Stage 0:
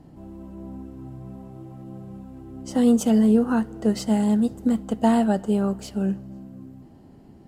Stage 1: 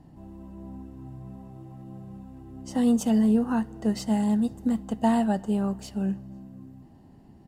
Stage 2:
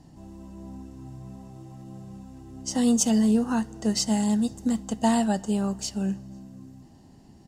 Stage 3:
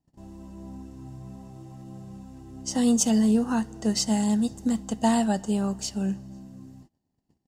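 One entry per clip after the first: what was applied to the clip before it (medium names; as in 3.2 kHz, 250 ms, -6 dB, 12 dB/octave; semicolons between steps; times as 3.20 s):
comb 1.1 ms, depth 31%; trim -4 dB
peaking EQ 6.2 kHz +14.5 dB 1.5 oct
gate -47 dBFS, range -28 dB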